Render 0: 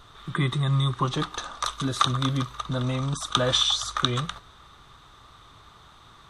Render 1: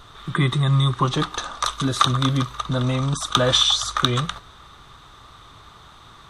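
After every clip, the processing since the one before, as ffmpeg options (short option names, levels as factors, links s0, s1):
-af "acontrast=28"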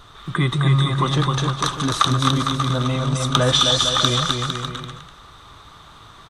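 -af "aecho=1:1:260|455|601.2|710.9|793.2:0.631|0.398|0.251|0.158|0.1"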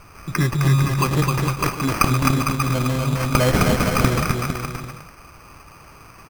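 -af "acrusher=samples=12:mix=1:aa=0.000001"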